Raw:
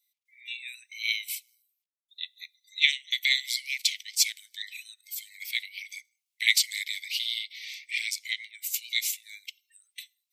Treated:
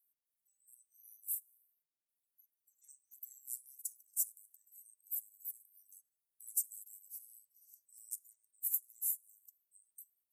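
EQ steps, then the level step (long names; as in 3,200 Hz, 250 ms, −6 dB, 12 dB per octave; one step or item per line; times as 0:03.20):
inverse Chebyshev band-stop filter 1,900–4,000 Hz, stop band 70 dB
−1.0 dB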